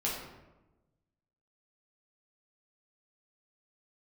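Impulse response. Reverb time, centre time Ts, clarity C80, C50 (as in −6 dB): 1.1 s, 58 ms, 5.0 dB, 2.5 dB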